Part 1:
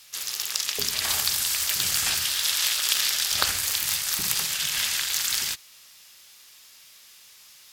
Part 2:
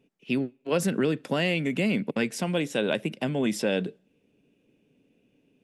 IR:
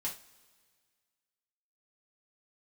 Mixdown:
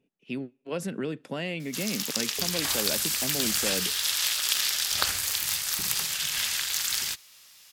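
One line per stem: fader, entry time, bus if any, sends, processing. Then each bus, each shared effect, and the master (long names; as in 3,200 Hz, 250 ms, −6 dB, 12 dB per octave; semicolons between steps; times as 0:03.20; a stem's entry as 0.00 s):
−2.5 dB, 1.60 s, no send, no processing
−7.0 dB, 0.00 s, no send, no processing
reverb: not used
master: no processing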